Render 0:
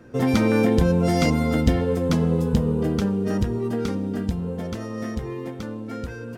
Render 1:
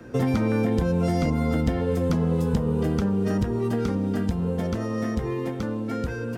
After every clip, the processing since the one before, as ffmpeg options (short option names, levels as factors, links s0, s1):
-filter_complex "[0:a]acrossover=split=160|620|1800[s0][s1][s2][s3];[s0]acompressor=threshold=0.0316:ratio=4[s4];[s1]acompressor=threshold=0.0282:ratio=4[s5];[s2]acompressor=threshold=0.01:ratio=4[s6];[s3]acompressor=threshold=0.00355:ratio=4[s7];[s4][s5][s6][s7]amix=inputs=4:normalize=0,volume=1.68"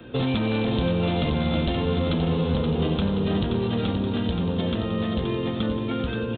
-af "aresample=8000,asoftclip=type=hard:threshold=0.1,aresample=44100,aexciter=amount=6.6:drive=6.3:freq=2900,aecho=1:1:526|1052|1578|2104|2630|3156:0.501|0.251|0.125|0.0626|0.0313|0.0157"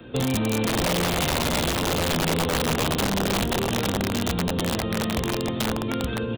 -af "aeval=exprs='(mod(7.94*val(0)+1,2)-1)/7.94':c=same"